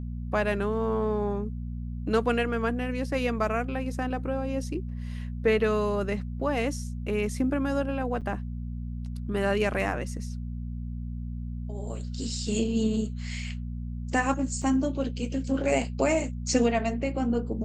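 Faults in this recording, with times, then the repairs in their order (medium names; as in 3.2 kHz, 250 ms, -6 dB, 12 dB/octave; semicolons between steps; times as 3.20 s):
hum 60 Hz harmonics 4 -34 dBFS
8.21–8.22 s: dropout 6.8 ms
14.62 s: dropout 3.1 ms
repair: de-hum 60 Hz, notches 4; interpolate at 8.21 s, 6.8 ms; interpolate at 14.62 s, 3.1 ms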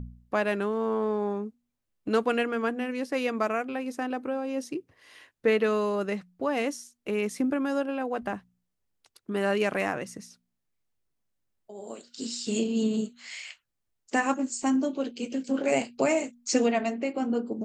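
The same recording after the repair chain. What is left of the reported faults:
nothing left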